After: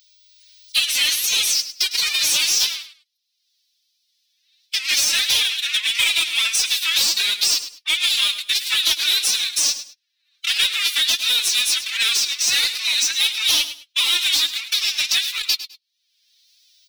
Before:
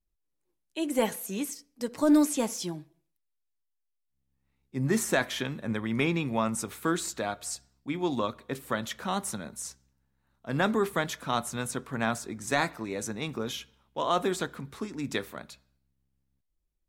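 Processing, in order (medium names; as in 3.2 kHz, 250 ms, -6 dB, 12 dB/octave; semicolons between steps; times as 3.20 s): high-order bell 4.5 kHz +15 dB 1 oct; waveshaping leveller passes 5; level rider gain up to 13.5 dB; ladder high-pass 2.3 kHz, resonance 65%; saturation -17.5 dBFS, distortion -9 dB; flange 1.5 Hz, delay 3.8 ms, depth 3.5 ms, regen +42%; formant-preserving pitch shift +12 st; feedback delay 103 ms, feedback 18%, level -14 dB; three bands compressed up and down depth 70%; trim +8.5 dB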